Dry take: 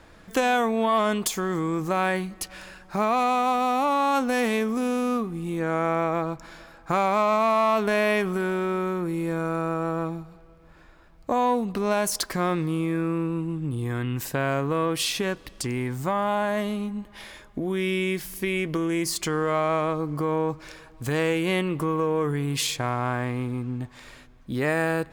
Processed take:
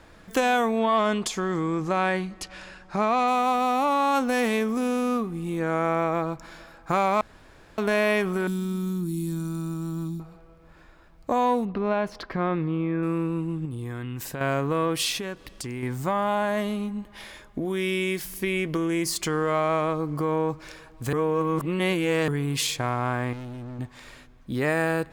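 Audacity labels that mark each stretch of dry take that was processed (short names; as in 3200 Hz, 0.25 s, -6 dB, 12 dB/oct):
0.790000	3.280000	LPF 6900 Hz
7.210000	7.780000	room tone
8.470000	10.200000	EQ curve 150 Hz 0 dB, 250 Hz +11 dB, 520 Hz -27 dB, 1000 Hz -15 dB, 2200 Hz -17 dB, 3600 Hz +2 dB, 15000 Hz +10 dB
11.650000	13.030000	air absorption 340 m
13.650000	14.410000	compressor 2.5:1, threshold -32 dBFS
15.180000	15.830000	compressor 1.5:1, threshold -39 dBFS
17.650000	18.250000	tone controls bass -3 dB, treble +3 dB
21.130000	22.280000	reverse
23.330000	23.790000	hard clip -35 dBFS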